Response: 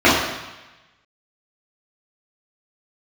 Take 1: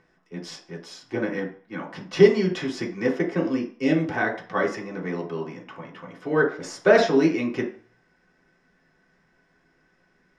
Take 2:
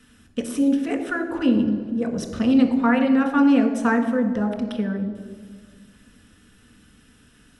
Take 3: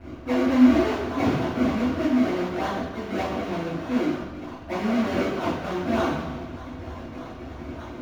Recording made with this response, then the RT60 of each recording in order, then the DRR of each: 3; 0.45, 1.7, 1.1 s; -3.5, 3.5, -10.5 dB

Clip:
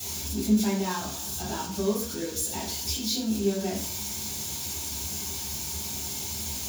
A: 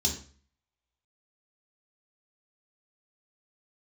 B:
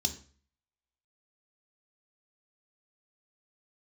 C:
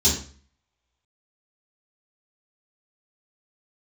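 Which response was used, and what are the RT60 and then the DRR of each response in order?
C; 0.45, 0.45, 0.45 s; -1.0, 6.0, -9.0 dB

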